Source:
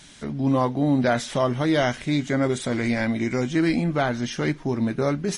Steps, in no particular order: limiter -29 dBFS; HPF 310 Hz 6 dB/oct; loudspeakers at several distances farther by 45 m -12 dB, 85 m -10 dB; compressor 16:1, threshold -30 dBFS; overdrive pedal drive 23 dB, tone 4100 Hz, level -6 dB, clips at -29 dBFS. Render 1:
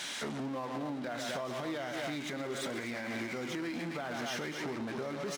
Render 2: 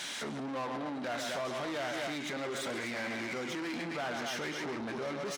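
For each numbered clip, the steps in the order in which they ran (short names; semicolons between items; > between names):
loudspeakers at several distances > overdrive pedal > compressor > HPF > limiter; loudspeakers at several distances > compressor > limiter > overdrive pedal > HPF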